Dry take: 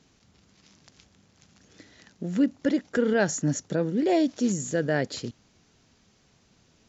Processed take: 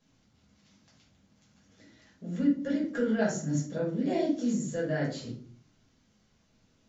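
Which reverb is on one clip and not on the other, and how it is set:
rectangular room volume 400 cubic metres, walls furnished, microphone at 5.6 metres
level −15.5 dB

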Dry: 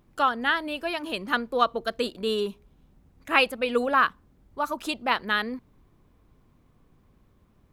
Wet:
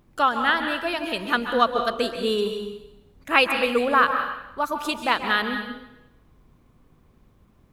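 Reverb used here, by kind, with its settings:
dense smooth reverb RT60 0.9 s, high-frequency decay 0.95×, pre-delay 120 ms, DRR 6 dB
level +2.5 dB

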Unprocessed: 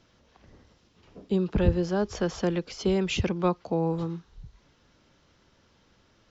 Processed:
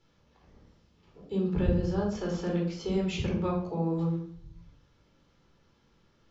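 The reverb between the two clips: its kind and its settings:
rectangular room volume 820 cubic metres, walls furnished, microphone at 4.2 metres
level −11 dB

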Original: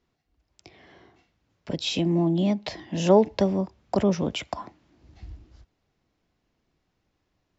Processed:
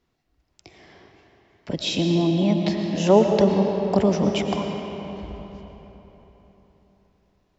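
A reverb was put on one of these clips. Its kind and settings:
comb and all-pass reverb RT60 4 s, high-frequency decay 0.65×, pre-delay 70 ms, DRR 3 dB
level +2 dB

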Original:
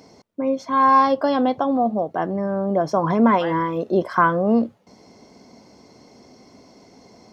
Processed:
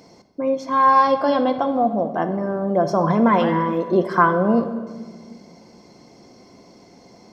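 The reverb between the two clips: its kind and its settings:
rectangular room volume 1,900 cubic metres, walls mixed, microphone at 0.83 metres

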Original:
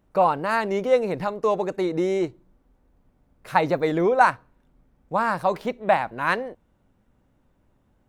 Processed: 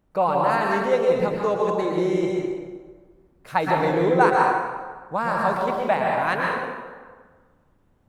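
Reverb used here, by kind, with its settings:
dense smooth reverb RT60 1.5 s, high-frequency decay 0.65×, pre-delay 105 ms, DRR −1.5 dB
level −2.5 dB

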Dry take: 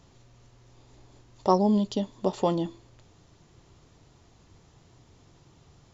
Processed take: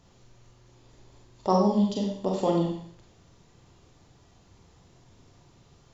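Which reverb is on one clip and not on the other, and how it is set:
four-comb reverb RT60 0.6 s, combs from 32 ms, DRR −0.5 dB
level −3 dB

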